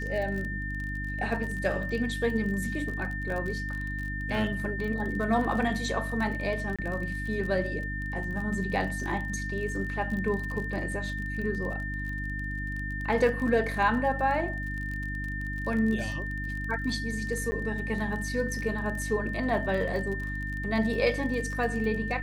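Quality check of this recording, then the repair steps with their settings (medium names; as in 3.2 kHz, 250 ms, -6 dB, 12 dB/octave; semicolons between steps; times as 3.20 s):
crackle 34 per s -34 dBFS
hum 50 Hz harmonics 6 -35 dBFS
whine 1.8 kHz -35 dBFS
6.76–6.79 s: dropout 26 ms
17.51–17.52 s: dropout 10 ms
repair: de-click; de-hum 50 Hz, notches 6; band-stop 1.8 kHz, Q 30; interpolate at 6.76 s, 26 ms; interpolate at 17.51 s, 10 ms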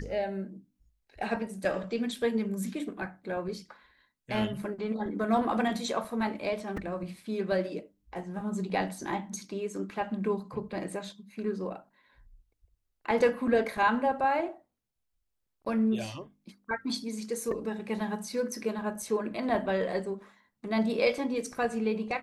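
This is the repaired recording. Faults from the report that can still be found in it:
nothing left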